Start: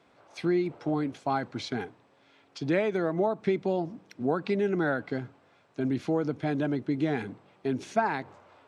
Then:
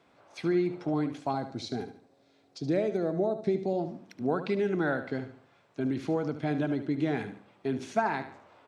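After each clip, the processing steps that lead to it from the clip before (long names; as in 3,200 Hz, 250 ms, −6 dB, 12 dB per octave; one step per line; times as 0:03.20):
gain on a spectral selection 0:01.32–0:03.79, 810–3,600 Hz −9 dB
on a send: repeating echo 73 ms, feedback 37%, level −11 dB
on the sum: level −1.5 dB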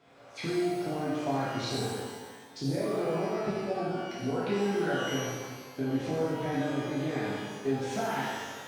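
downward compressor, threshold −34 dBFS, peak gain reduction 12.5 dB
reverb with rising layers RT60 1.4 s, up +12 semitones, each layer −8 dB, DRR −8 dB
level −1.5 dB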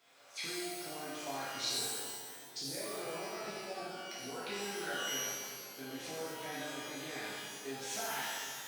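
spectral tilt +4.5 dB per octave
feedback echo with a low-pass in the loop 380 ms, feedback 71%, low-pass 1,100 Hz, level −13 dB
level −7.5 dB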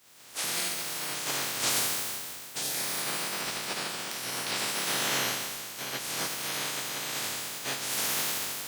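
ceiling on every frequency bin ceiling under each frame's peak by 25 dB
level +9 dB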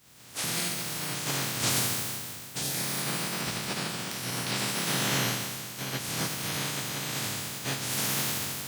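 bass and treble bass +14 dB, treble 0 dB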